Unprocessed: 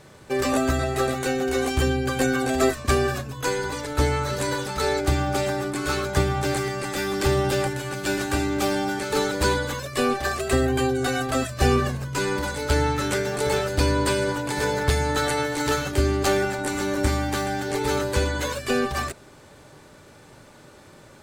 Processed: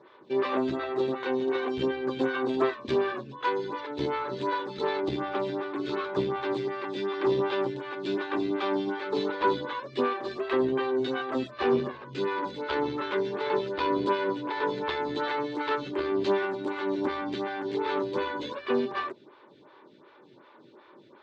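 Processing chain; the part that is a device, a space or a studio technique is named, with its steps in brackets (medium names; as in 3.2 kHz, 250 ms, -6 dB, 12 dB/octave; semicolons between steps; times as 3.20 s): vibe pedal into a guitar amplifier (lamp-driven phase shifter 2.7 Hz; valve stage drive 17 dB, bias 0.65; cabinet simulation 100–3900 Hz, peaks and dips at 110 Hz -5 dB, 160 Hz -9 dB, 360 Hz +8 dB, 720 Hz -5 dB, 1 kHz +9 dB, 3.6 kHz +6 dB); resonant low shelf 110 Hz -9.5 dB, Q 1.5; trim -1.5 dB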